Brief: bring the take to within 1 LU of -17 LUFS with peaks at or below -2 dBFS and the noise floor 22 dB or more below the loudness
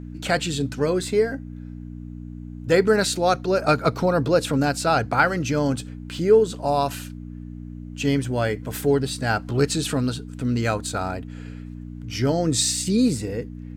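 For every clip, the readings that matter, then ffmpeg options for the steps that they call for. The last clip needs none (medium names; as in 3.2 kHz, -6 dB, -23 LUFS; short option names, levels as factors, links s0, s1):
hum 60 Hz; highest harmonic 300 Hz; hum level -33 dBFS; loudness -22.5 LUFS; peak level -4.5 dBFS; loudness target -17.0 LUFS
-> -af "bandreject=f=60:t=h:w=4,bandreject=f=120:t=h:w=4,bandreject=f=180:t=h:w=4,bandreject=f=240:t=h:w=4,bandreject=f=300:t=h:w=4"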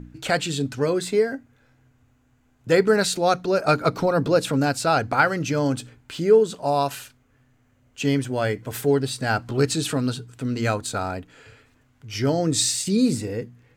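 hum not found; loudness -22.5 LUFS; peak level -4.5 dBFS; loudness target -17.0 LUFS
-> -af "volume=1.88,alimiter=limit=0.794:level=0:latency=1"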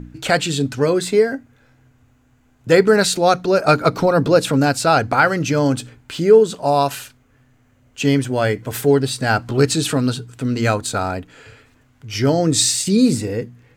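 loudness -17.0 LUFS; peak level -2.0 dBFS; noise floor -57 dBFS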